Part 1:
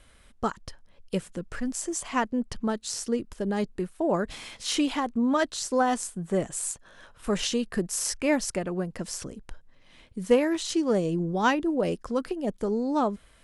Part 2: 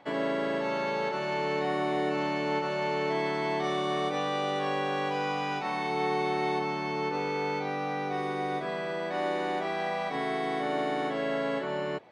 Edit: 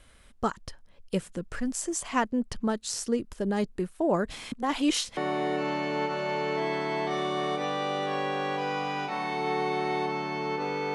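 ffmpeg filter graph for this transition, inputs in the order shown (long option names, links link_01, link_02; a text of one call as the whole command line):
ffmpeg -i cue0.wav -i cue1.wav -filter_complex "[0:a]apad=whole_dur=10.94,atrim=end=10.94,asplit=2[link_01][link_02];[link_01]atrim=end=4.522[link_03];[link_02]atrim=start=4.518:end=5.172,asetpts=PTS-STARTPTS,areverse[link_04];[1:a]atrim=start=1.698:end=7.47[link_05];[link_03][link_04]acrossfade=duration=0.004:curve1=hsin:curve2=hsin[link_06];[link_06][link_05]acrossfade=duration=0.004:curve1=hsin:curve2=hsin" out.wav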